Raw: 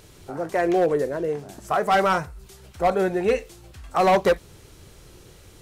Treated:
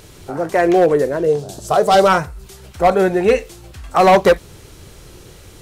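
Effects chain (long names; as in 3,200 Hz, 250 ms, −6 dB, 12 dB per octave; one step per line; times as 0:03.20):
0:01.26–0:02.08: graphic EQ with 10 bands 125 Hz +5 dB, 250 Hz −5 dB, 500 Hz +6 dB, 1,000 Hz −3 dB, 2,000 Hz −10 dB, 4,000 Hz +7 dB, 8,000 Hz +4 dB
level +7.5 dB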